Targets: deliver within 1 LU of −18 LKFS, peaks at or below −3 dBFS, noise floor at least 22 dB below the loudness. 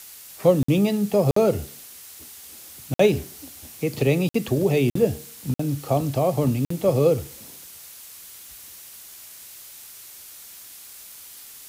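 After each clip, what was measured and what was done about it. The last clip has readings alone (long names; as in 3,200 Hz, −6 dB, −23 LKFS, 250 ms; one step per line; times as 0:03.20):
number of dropouts 7; longest dropout 54 ms; background noise floor −43 dBFS; target noise floor −44 dBFS; integrated loudness −22.0 LKFS; sample peak −5.5 dBFS; target loudness −18.0 LKFS
→ repair the gap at 0:00.63/0:01.31/0:02.94/0:04.29/0:04.90/0:05.54/0:06.65, 54 ms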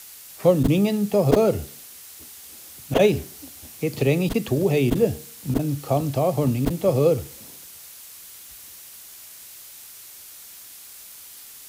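number of dropouts 0; background noise floor −43 dBFS; target noise floor −44 dBFS
→ noise reduction from a noise print 6 dB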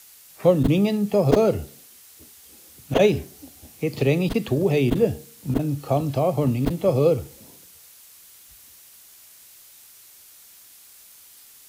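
background noise floor −49 dBFS; integrated loudness −22.0 LKFS; sample peak −3.5 dBFS; target loudness −18.0 LKFS
→ level +4 dB
brickwall limiter −3 dBFS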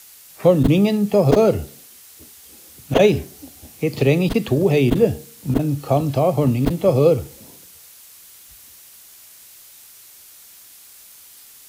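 integrated loudness −18.0 LKFS; sample peak −3.0 dBFS; background noise floor −45 dBFS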